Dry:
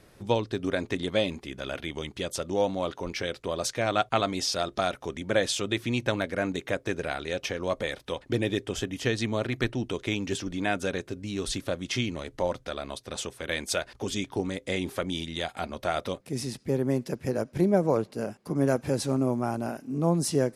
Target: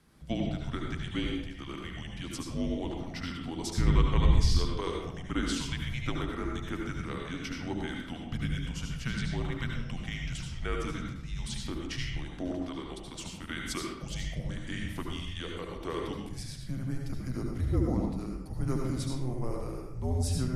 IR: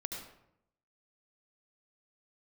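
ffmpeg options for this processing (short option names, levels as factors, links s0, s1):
-filter_complex "[0:a]afreqshift=-260,asplit=3[s0][s1][s2];[s0]afade=t=out:st=3.74:d=0.02[s3];[s1]asubboost=boost=11:cutoff=140,afade=t=in:st=3.74:d=0.02,afade=t=out:st=4.59:d=0.02[s4];[s2]afade=t=in:st=4.59:d=0.02[s5];[s3][s4][s5]amix=inputs=3:normalize=0[s6];[1:a]atrim=start_sample=2205[s7];[s6][s7]afir=irnorm=-1:irlink=0,volume=0.531"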